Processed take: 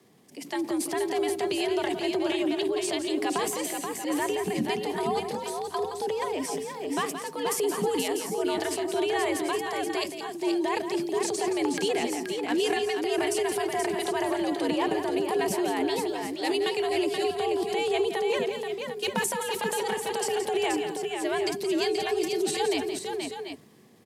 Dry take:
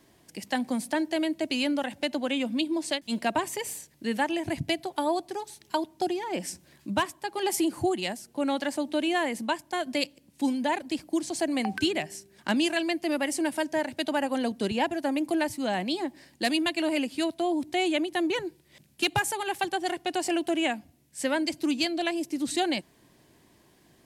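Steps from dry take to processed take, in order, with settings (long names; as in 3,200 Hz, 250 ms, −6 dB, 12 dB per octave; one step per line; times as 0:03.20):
transient designer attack −3 dB, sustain +9 dB
low-shelf EQ 170 Hz +10 dB
frequency shifter +86 Hz
multi-tap delay 172/479/730/744 ms −9.5/−5.5/−17/−10.5 dB
level −3 dB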